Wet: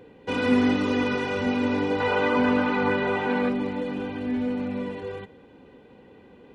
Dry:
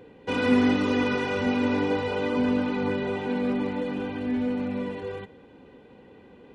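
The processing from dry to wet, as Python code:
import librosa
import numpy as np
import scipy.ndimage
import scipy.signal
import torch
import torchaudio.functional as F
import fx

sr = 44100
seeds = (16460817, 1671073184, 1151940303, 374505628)

y = fx.peak_eq(x, sr, hz=1300.0, db=10.0, octaves=2.2, at=(2.0, 3.49))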